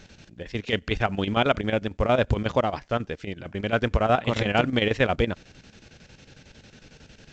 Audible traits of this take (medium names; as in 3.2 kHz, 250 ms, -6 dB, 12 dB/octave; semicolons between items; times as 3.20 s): chopped level 11 Hz, depth 65%, duty 70%; µ-law